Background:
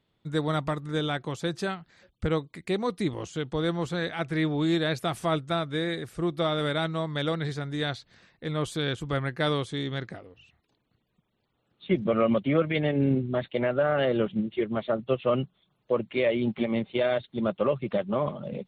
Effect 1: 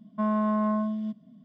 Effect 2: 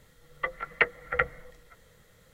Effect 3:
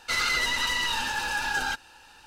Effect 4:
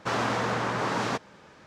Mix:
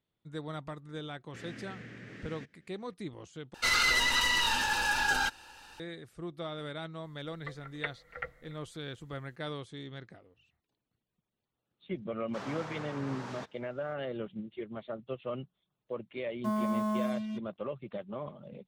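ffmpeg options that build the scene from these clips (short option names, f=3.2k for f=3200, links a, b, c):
-filter_complex "[4:a]asplit=2[a][b];[0:a]volume=-12.5dB[c];[a]firequalizer=gain_entry='entry(260,0);entry(520,-10);entry(940,-26);entry(1800,1);entry(4100,-10)':delay=0.05:min_phase=1[d];[2:a]aecho=1:1:285:0.075[e];[1:a]acrusher=bits=6:mix=0:aa=0.5[f];[c]asplit=2[g][h];[g]atrim=end=3.544[i];[3:a]atrim=end=2.26,asetpts=PTS-STARTPTS,volume=-0.5dB[j];[h]atrim=start=5.796[k];[d]atrim=end=1.66,asetpts=PTS-STARTPTS,volume=-14dB,afade=t=in:d=0.004:c=hsin,afade=t=out:st=1.656:d=0.004:c=hsin,adelay=1280[l];[e]atrim=end=2.33,asetpts=PTS-STARTPTS,volume=-13.5dB,afade=t=in:d=0.004:c=hsin,afade=t=out:st=2.326:d=0.004:c=hsin,adelay=7030[m];[b]atrim=end=1.66,asetpts=PTS-STARTPTS,volume=-15dB,afade=t=in:d=0.004:c=hsin,afade=t=out:st=1.656:d=0.004:c=hsin,adelay=12280[n];[f]atrim=end=1.44,asetpts=PTS-STARTPTS,volume=-5.5dB,afade=t=in:d=0.004:c=hsin,afade=t=out:st=1.436:d=0.004:c=hsin,adelay=16260[o];[i][j]acrossfade=d=0.004:c1=hsin:c2=hsin[p];[p][k]acrossfade=d=0.004:c1=hsin:c2=hsin[q];[q][l][m][n][o]amix=inputs=5:normalize=0"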